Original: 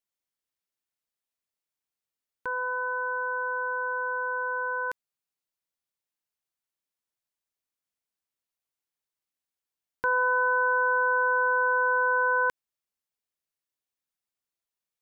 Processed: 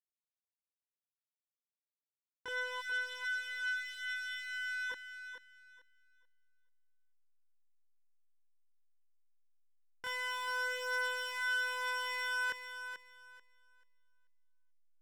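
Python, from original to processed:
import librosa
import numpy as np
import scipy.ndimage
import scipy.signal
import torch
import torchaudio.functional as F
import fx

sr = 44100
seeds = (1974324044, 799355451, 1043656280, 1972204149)

y = scipy.signal.sosfilt(scipy.signal.butter(4, 1900.0, 'lowpass', fs=sr, output='sos'), x)
y = 10.0 ** (-35.5 / 20.0) * np.tanh(y / 10.0 ** (-35.5 / 20.0))
y = fx.chorus_voices(y, sr, voices=2, hz=0.16, base_ms=25, depth_ms=2.0, mix_pct=55)
y = fx.backlash(y, sr, play_db=-58.5)
y = fx.brickwall_bandstop(y, sr, low_hz=420.0, high_hz=1200.0, at=(2.8, 4.89), fade=0.02)
y = fx.echo_thinned(y, sr, ms=437, feedback_pct=23, hz=200.0, wet_db=-9)
y = y * librosa.db_to_amplitude(3.5)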